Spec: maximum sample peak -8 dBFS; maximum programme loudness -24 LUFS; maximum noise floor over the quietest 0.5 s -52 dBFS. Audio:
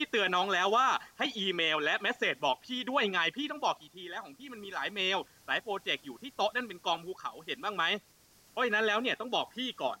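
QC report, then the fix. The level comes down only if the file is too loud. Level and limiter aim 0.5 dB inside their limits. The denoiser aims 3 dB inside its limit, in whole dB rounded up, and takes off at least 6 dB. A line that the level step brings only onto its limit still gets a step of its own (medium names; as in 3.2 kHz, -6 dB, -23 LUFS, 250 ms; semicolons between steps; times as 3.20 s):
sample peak -14.5 dBFS: pass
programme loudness -31.5 LUFS: pass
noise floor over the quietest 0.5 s -63 dBFS: pass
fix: none needed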